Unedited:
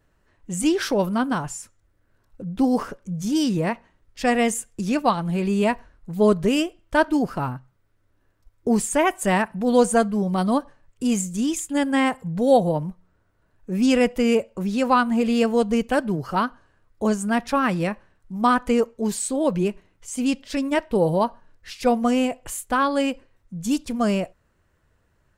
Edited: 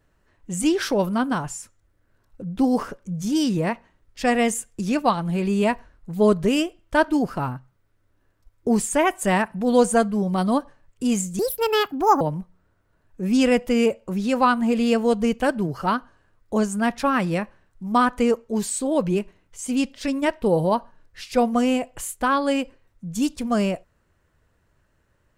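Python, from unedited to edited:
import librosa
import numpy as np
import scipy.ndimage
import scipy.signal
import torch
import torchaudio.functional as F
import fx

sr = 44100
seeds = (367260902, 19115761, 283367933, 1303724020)

y = fx.edit(x, sr, fx.speed_span(start_s=11.39, length_s=1.31, speed=1.6), tone=tone)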